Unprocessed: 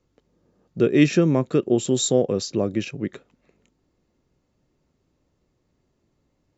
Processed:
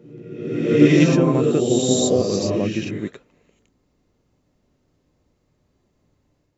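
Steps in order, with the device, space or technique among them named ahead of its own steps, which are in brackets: reverse reverb (reverse; reverb RT60 1.2 s, pre-delay 65 ms, DRR -2.5 dB; reverse); gain -1 dB

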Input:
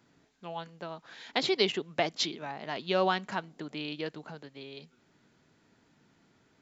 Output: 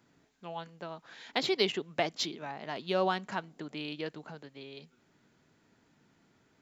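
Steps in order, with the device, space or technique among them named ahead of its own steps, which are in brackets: exciter from parts (in parallel at -13 dB: HPF 3200 Hz 12 dB/oct + soft clip -35.5 dBFS, distortion -5 dB + HPF 4000 Hz); 2.18–3.3 on the sum: dynamic EQ 2300 Hz, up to -3 dB, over -39 dBFS, Q 0.85; gain -1.5 dB

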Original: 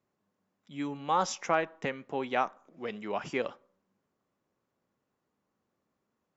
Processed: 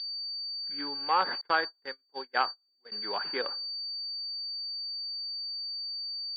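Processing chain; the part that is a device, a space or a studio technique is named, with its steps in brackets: toy sound module (decimation joined by straight lines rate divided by 8×; pulse-width modulation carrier 4600 Hz; speaker cabinet 510–4500 Hz, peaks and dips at 640 Hz -9 dB, 1600 Hz +9 dB, 3500 Hz +8 dB); 1.41–2.92 gate -34 dBFS, range -37 dB; gain +3.5 dB

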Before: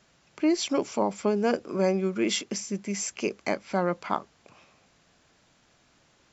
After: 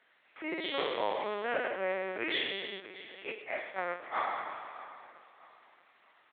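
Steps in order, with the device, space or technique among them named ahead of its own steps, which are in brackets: spectral trails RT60 1.99 s; 2.79–4.17 gate -22 dBFS, range -11 dB; feedback echo 0.631 s, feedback 35%, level -16.5 dB; talking toy (LPC vocoder at 8 kHz pitch kept; HPF 490 Hz 12 dB/oct; bell 1900 Hz +9 dB 0.57 oct); gain -7 dB

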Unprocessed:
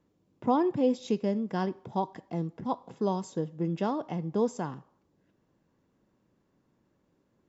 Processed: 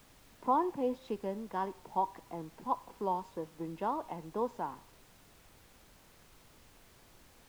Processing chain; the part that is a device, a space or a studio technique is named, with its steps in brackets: horn gramophone (BPF 260–3200 Hz; bell 950 Hz +10.5 dB 0.53 oct; wow and flutter; pink noise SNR 22 dB); gain -7 dB

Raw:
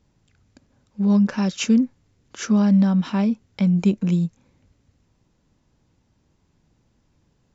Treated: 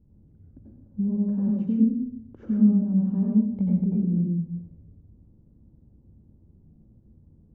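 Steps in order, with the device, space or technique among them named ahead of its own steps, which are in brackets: television next door (compressor 5:1, threshold -29 dBFS, peak gain reduction 14.5 dB; LPF 270 Hz 12 dB/oct; reverb RT60 0.70 s, pre-delay 82 ms, DRR -3.5 dB); gain +5.5 dB

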